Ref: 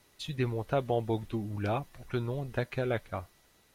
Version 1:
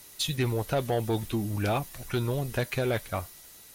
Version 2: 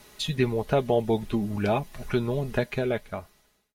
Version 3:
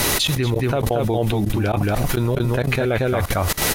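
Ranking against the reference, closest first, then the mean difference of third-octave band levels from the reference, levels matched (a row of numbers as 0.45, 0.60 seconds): 2, 1, 3; 3.0, 5.5, 10.0 decibels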